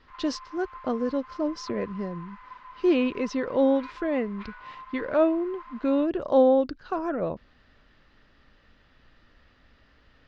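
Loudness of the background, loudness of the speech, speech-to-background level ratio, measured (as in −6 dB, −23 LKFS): −45.0 LKFS, −26.5 LKFS, 18.5 dB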